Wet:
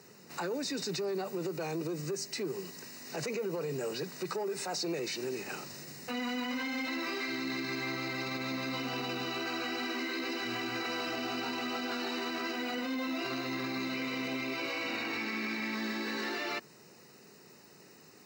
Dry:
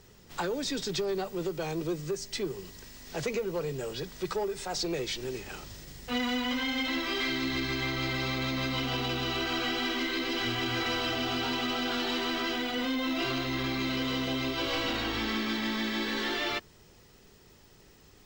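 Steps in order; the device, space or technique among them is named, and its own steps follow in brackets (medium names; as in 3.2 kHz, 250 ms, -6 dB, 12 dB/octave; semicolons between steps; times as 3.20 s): 13.94–15.75 s: peaking EQ 2.3 kHz +10 dB 0.26 oct; PA system with an anti-feedback notch (high-pass 150 Hz 24 dB/octave; Butterworth band-stop 3.3 kHz, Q 4.4; peak limiter -30 dBFS, peak gain reduction 11.5 dB); trim +2.5 dB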